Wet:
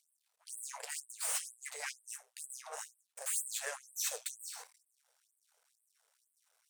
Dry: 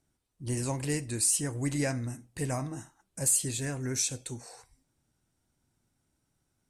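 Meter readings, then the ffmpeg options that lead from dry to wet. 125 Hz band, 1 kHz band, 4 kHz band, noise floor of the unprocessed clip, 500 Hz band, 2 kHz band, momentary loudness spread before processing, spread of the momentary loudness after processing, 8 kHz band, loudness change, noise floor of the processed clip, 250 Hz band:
under -40 dB, -6.0 dB, -5.0 dB, -79 dBFS, -14.0 dB, -4.0 dB, 17 LU, 13 LU, -8.5 dB, -9.5 dB, -82 dBFS, under -40 dB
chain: -af "areverse,acompressor=threshold=-38dB:ratio=10,areverse,flanger=delay=6.7:depth=6.6:regen=-53:speed=1.2:shape=triangular,aeval=exprs='max(val(0),0)':c=same,afftfilt=real='re*gte(b*sr/1024,410*pow(8000/410,0.5+0.5*sin(2*PI*2.1*pts/sr)))':imag='im*gte(b*sr/1024,410*pow(8000/410,0.5+0.5*sin(2*PI*2.1*pts/sr)))':win_size=1024:overlap=0.75,volume=14dB"

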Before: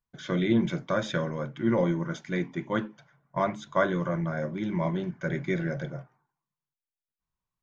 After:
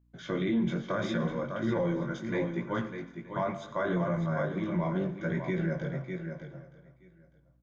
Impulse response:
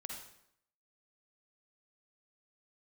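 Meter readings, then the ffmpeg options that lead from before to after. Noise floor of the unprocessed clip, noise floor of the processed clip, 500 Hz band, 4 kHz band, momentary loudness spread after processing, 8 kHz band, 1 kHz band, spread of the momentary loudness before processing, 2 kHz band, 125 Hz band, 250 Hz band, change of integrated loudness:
under -85 dBFS, -63 dBFS, -2.5 dB, -4.5 dB, 9 LU, n/a, -3.5 dB, 8 LU, -3.5 dB, -1.5 dB, -2.0 dB, -3.0 dB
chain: -filter_complex "[0:a]highshelf=f=3.6k:g=-7,flanger=delay=16.5:depth=5.6:speed=0.73,aecho=1:1:600:0.376,asplit=2[a][b];[1:a]atrim=start_sample=2205,asetrate=38367,aresample=44100[c];[b][c]afir=irnorm=-1:irlink=0,volume=-7.5dB[d];[a][d]amix=inputs=2:normalize=0,alimiter=limit=-21dB:level=0:latency=1:release=29,aeval=exprs='val(0)+0.000562*(sin(2*PI*60*n/s)+sin(2*PI*2*60*n/s)/2+sin(2*PI*3*60*n/s)/3+sin(2*PI*4*60*n/s)/4+sin(2*PI*5*60*n/s)/5)':c=same,asplit=2[e][f];[f]aecho=0:1:923:0.0891[g];[e][g]amix=inputs=2:normalize=0"

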